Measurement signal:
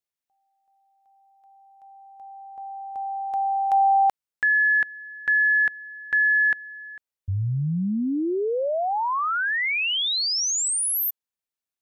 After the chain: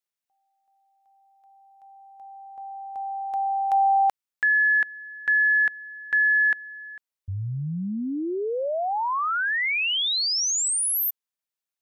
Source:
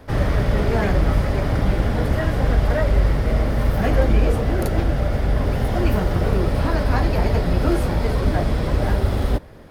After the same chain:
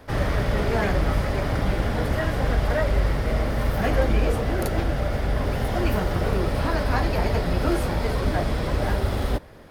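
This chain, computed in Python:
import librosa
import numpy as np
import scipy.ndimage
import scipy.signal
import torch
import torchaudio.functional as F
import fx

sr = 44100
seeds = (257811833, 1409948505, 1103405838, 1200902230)

y = fx.low_shelf(x, sr, hz=470.0, db=-5.0)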